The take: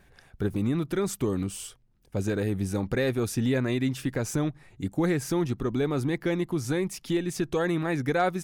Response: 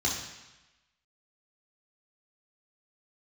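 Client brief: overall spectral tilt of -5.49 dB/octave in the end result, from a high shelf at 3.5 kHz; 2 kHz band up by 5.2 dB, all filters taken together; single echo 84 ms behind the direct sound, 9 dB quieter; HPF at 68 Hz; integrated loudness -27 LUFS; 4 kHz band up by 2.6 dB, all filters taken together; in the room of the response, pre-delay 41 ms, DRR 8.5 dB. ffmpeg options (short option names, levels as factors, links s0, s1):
-filter_complex "[0:a]highpass=68,equalizer=f=2000:t=o:g=7.5,highshelf=f=3500:g=-9,equalizer=f=4000:t=o:g=6.5,aecho=1:1:84:0.355,asplit=2[s0][s1];[1:a]atrim=start_sample=2205,adelay=41[s2];[s1][s2]afir=irnorm=-1:irlink=0,volume=0.141[s3];[s0][s3]amix=inputs=2:normalize=0,volume=0.944"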